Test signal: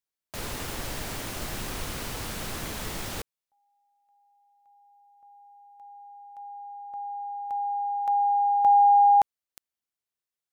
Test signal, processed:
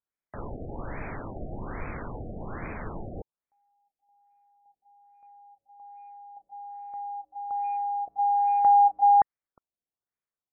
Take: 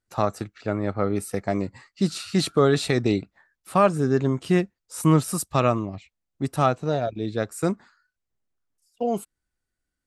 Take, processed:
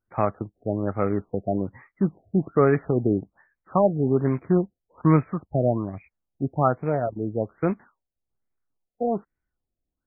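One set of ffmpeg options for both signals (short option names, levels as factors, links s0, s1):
-af "acrusher=bits=4:mode=log:mix=0:aa=0.000001,afftfilt=real='re*lt(b*sr/1024,750*pow(2600/750,0.5+0.5*sin(2*PI*1.2*pts/sr)))':imag='im*lt(b*sr/1024,750*pow(2600/750,0.5+0.5*sin(2*PI*1.2*pts/sr)))':win_size=1024:overlap=0.75"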